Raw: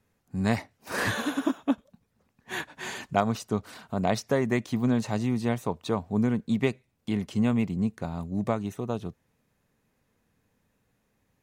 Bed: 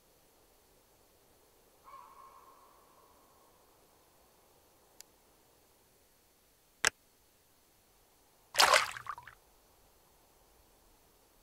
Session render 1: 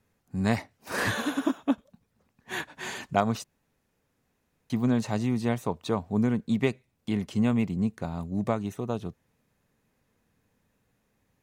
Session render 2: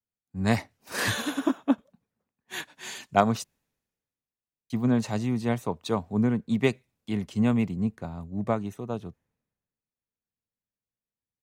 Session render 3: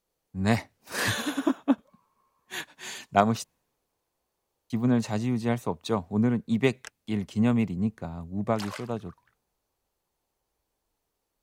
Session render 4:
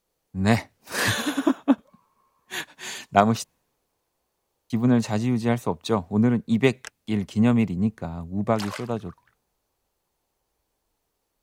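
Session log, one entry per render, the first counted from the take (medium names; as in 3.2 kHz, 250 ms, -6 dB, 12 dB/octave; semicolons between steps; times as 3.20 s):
3.44–4.70 s: room tone
three bands expanded up and down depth 70%
add bed -15 dB
trim +4 dB; peak limiter -1 dBFS, peak gain reduction 1.5 dB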